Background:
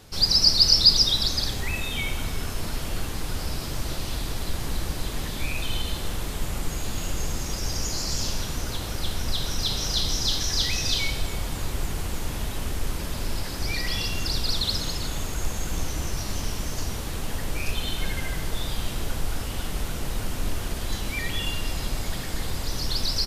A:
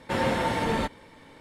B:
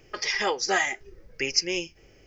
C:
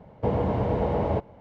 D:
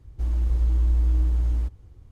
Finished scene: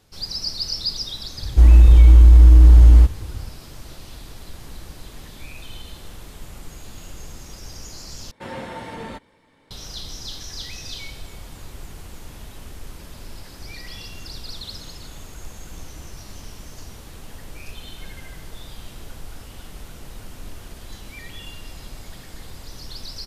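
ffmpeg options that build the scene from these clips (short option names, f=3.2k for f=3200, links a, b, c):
-filter_complex "[0:a]volume=-9.5dB[a];[4:a]alimiter=level_in=17.5dB:limit=-1dB:release=50:level=0:latency=1[b];[a]asplit=2[c][d];[c]atrim=end=8.314[e];[1:a]atrim=end=1.4,asetpts=PTS-STARTPTS,volume=-8dB[f];[d]atrim=start=9.706[g];[b]atrim=end=2.11,asetpts=PTS-STARTPTS,volume=-2dB,afade=t=in:d=0.004:c=hsin,afade=t=out:st=2.106:d=0.004:c=hsin,adelay=1380[h];[e][f]acrossfade=d=0.004:c1=hsin:c2=hsin[i];[i][g]acrossfade=d=0.004:c1=hsin:c2=hsin[j];[j][h]amix=inputs=2:normalize=0"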